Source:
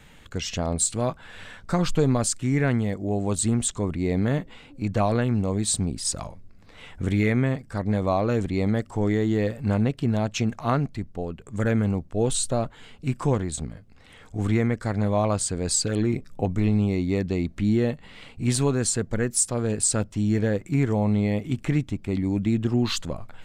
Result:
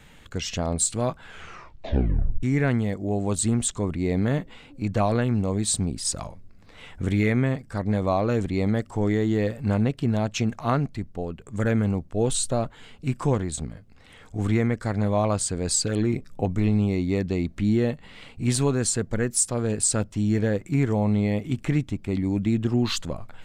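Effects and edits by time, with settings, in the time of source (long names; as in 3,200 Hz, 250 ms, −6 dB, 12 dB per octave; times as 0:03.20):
0:01.24: tape stop 1.19 s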